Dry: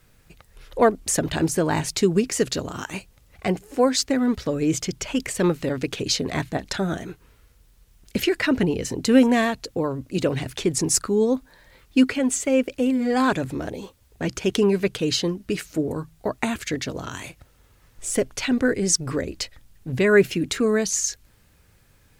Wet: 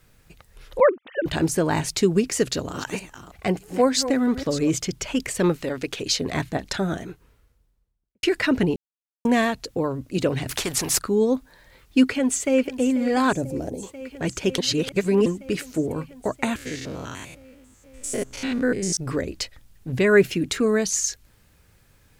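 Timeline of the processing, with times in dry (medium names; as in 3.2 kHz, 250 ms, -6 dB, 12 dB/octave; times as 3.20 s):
0.80–1.26 s: formants replaced by sine waves
2.36–4.74 s: chunks repeated in reverse 318 ms, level -11 dB
5.56–6.21 s: peaking EQ 130 Hz -7 dB 2.3 oct
6.78–8.23 s: studio fade out
8.76–9.25 s: mute
10.49–10.99 s: spectrum-flattening compressor 2:1
12.04–12.71 s: echo throw 490 ms, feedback 85%, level -14.5 dB
13.33–13.83 s: high-order bell 2 kHz -13.5 dB 2.3 oct
14.58–15.26 s: reverse
16.56–18.97 s: spectrogram pixelated in time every 100 ms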